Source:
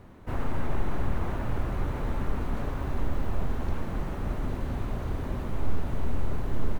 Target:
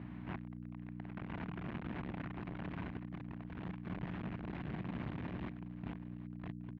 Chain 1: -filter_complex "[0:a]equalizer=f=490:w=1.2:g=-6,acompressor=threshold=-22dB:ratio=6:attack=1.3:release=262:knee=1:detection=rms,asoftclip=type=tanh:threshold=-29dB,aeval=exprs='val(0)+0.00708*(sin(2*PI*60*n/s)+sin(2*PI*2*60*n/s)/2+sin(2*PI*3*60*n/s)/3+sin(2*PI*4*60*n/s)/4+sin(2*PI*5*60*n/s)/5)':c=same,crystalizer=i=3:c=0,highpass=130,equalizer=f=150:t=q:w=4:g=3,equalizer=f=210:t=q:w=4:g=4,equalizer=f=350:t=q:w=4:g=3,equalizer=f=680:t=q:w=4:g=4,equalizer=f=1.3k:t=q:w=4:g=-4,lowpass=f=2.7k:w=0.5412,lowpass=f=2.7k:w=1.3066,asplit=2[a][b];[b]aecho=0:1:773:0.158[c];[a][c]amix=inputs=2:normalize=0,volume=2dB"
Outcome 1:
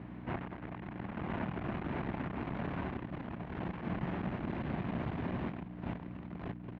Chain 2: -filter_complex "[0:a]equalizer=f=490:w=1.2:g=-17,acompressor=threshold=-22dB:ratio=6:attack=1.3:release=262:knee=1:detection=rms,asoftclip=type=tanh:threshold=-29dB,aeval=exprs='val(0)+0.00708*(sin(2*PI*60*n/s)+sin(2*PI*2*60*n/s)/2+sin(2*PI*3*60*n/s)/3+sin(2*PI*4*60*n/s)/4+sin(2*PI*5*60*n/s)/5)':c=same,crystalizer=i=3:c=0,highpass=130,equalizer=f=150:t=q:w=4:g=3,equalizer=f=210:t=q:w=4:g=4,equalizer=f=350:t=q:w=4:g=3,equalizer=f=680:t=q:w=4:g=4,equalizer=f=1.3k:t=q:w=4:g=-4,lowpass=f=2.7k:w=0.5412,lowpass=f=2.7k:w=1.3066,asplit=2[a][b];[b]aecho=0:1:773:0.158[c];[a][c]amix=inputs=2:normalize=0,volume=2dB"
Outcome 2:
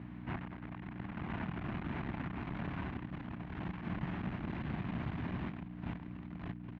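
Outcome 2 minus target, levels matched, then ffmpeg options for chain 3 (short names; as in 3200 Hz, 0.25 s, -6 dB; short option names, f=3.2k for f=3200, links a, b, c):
soft clip: distortion -5 dB
-filter_complex "[0:a]equalizer=f=490:w=1.2:g=-17,acompressor=threshold=-22dB:ratio=6:attack=1.3:release=262:knee=1:detection=rms,asoftclip=type=tanh:threshold=-38dB,aeval=exprs='val(0)+0.00708*(sin(2*PI*60*n/s)+sin(2*PI*2*60*n/s)/2+sin(2*PI*3*60*n/s)/3+sin(2*PI*4*60*n/s)/4+sin(2*PI*5*60*n/s)/5)':c=same,crystalizer=i=3:c=0,highpass=130,equalizer=f=150:t=q:w=4:g=3,equalizer=f=210:t=q:w=4:g=4,equalizer=f=350:t=q:w=4:g=3,equalizer=f=680:t=q:w=4:g=4,equalizer=f=1.3k:t=q:w=4:g=-4,lowpass=f=2.7k:w=0.5412,lowpass=f=2.7k:w=1.3066,asplit=2[a][b];[b]aecho=0:1:773:0.158[c];[a][c]amix=inputs=2:normalize=0,volume=2dB"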